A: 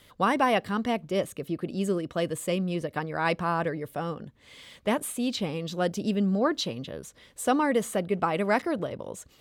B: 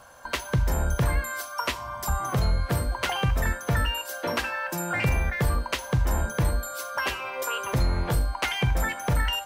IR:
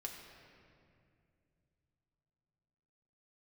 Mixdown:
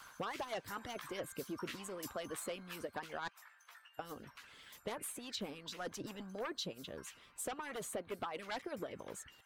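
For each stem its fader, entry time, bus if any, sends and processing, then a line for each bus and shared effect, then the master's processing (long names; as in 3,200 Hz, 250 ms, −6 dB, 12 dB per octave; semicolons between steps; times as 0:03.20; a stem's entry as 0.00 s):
−16.5 dB, 0.00 s, muted 0:03.28–0:03.99, no send, sine wavefolder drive 7 dB, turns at −11 dBFS
0:02.55 −6.5 dB → 0:03.31 −16 dB, 0.00 s, send −8.5 dB, high-pass filter 1,100 Hz 24 dB per octave; chorus effect 0.44 Hz, delay 15 ms, depth 2.9 ms; envelope flattener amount 50%; automatic ducking −9 dB, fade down 0.25 s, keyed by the first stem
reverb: on, RT60 2.5 s, pre-delay 5 ms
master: harmonic and percussive parts rebalanced harmonic −18 dB; downward compressor, threshold −38 dBFS, peak gain reduction 7.5 dB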